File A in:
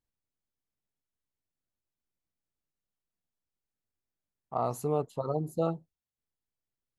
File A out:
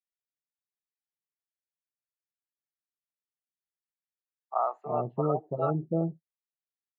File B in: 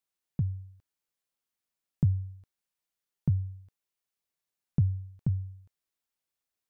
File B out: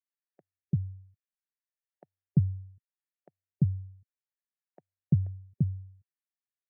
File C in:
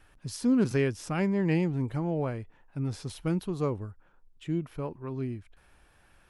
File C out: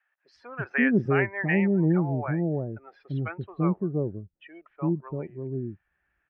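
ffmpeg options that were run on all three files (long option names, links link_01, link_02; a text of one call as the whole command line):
ffmpeg -i in.wav -filter_complex "[0:a]afftdn=noise_reduction=21:noise_floor=-44,highpass=170,equalizer=frequency=260:width_type=q:width=4:gain=-8,equalizer=frequency=480:width_type=q:width=4:gain=-7,equalizer=frequency=1000:width_type=q:width=4:gain=-6,equalizer=frequency=1800:width_type=q:width=4:gain=8,lowpass=frequency=2500:width=0.5412,lowpass=frequency=2500:width=1.3066,acrossover=split=600[link_01][link_02];[link_01]adelay=340[link_03];[link_03][link_02]amix=inputs=2:normalize=0,volume=8dB" out.wav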